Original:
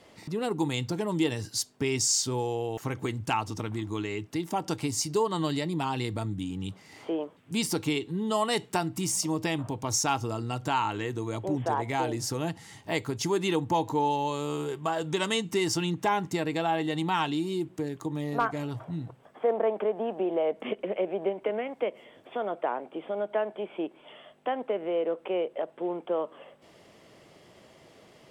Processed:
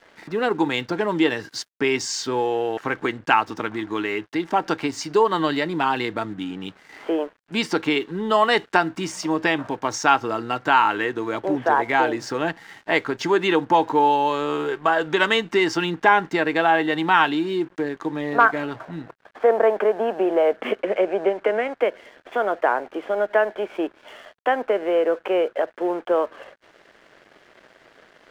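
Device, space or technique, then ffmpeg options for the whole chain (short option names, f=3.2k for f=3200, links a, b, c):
pocket radio on a weak battery: -filter_complex "[0:a]highpass=280,lowpass=3.4k,aeval=exprs='sgn(val(0))*max(abs(val(0))-0.00126,0)':c=same,equalizer=f=1.6k:t=o:w=0.56:g=9,asettb=1/sr,asplit=3[a][b][c];[a]atrim=end=20.814[d];[b]atrim=start=20.81:end=21.77,asetpts=PTS-STARTPTS,afade=t=in:d=0.004:c=qsin,afade=t=out:st=0.956:d=0.004:c=qsin,lowpass=10k[e];[c]atrim=start=21.766[f];[d][e]acrossfade=d=0.004:c1=hsin:c2=qsin[g];[g][f]acrossfade=d=0.004:c1=qsin:c2=hsin,volume=9dB"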